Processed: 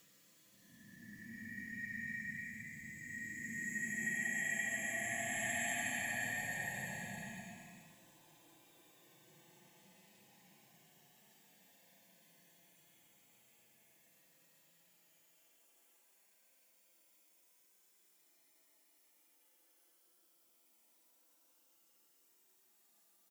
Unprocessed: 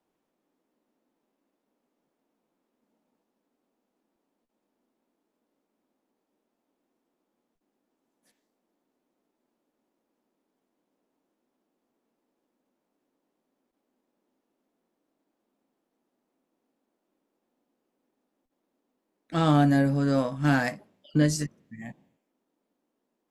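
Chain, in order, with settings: pre-emphasis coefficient 0.97; comb 5.9 ms; Paulstretch 31×, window 0.05 s, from 21.68; gain +17 dB

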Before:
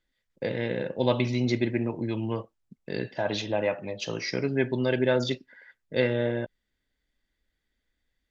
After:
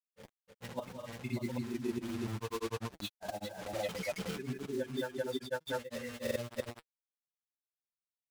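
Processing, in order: per-bin expansion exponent 3; air absorption 190 m; on a send: loudspeakers at several distances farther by 10 m -2 dB, 94 m -1 dB; on the sum: bit-crush 7-bit; auto swell 0.307 s; notch comb 160 Hz; grains, spray 0.357 s; vocal rider within 5 dB 0.5 s; gain +1 dB

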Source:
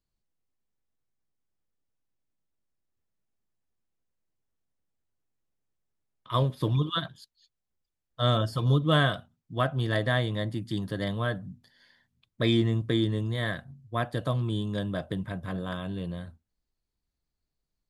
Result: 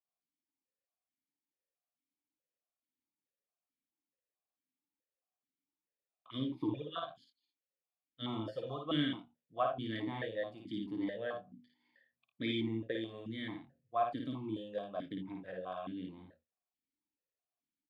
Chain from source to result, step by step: early reflections 54 ms -3.5 dB, 79 ms -12.5 dB; vowel sequencer 4.6 Hz; gain +2 dB

